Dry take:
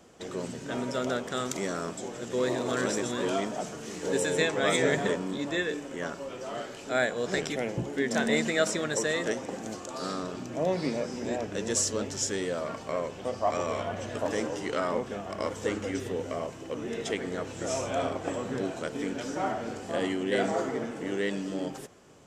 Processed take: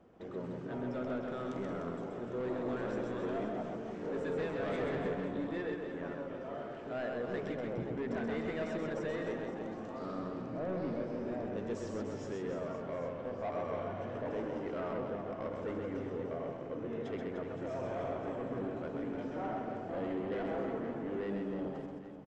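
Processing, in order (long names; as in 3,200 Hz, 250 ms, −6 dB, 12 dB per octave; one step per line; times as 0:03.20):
high-shelf EQ 2,900 Hz −10 dB
soft clipping −28 dBFS, distortion −11 dB
head-to-tape spacing loss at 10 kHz 25 dB
on a send: reverse bouncing-ball delay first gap 130 ms, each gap 1.3×, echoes 5
on the sum: level −4 dB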